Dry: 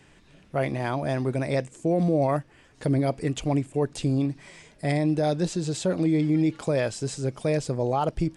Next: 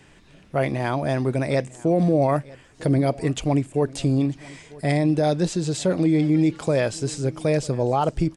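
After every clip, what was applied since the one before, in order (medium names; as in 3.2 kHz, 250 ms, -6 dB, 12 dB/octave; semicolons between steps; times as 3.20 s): delay 948 ms -22 dB; trim +3.5 dB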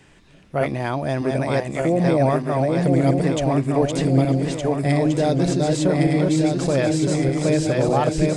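backward echo that repeats 607 ms, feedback 71%, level -2.5 dB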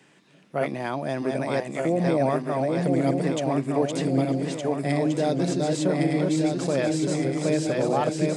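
high-pass 150 Hz 24 dB/octave; trim -4 dB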